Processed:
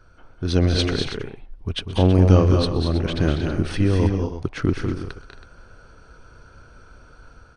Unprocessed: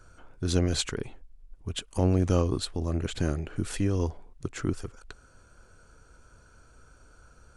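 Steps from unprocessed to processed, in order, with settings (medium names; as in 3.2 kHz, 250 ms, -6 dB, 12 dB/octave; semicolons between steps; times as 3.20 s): level rider gain up to 6 dB; Savitzky-Golay filter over 15 samples; multi-tap echo 126/195/226/272/324 ms -19.5/-7/-8/-20/-12.5 dB; trim +1.5 dB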